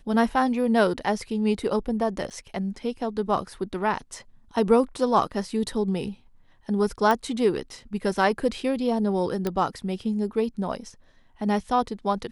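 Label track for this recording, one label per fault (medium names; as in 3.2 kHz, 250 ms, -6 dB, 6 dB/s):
2.300000	2.310000	dropout 8.1 ms
7.110000	7.110000	pop
9.470000	9.470000	pop -13 dBFS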